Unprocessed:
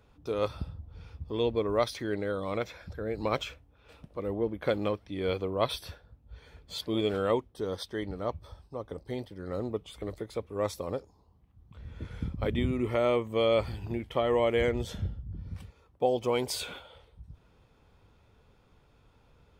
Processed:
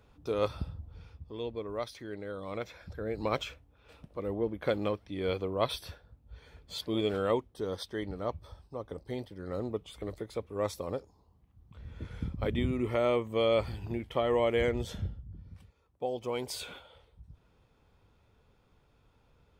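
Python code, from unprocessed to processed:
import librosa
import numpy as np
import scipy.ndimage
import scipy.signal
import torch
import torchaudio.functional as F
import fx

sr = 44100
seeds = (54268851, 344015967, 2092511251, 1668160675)

y = fx.gain(x, sr, db=fx.line((0.86, 0.0), (1.35, -9.0), (2.15, -9.0), (3.0, -1.5), (15.0, -1.5), (15.56, -10.5), (16.7, -4.0)))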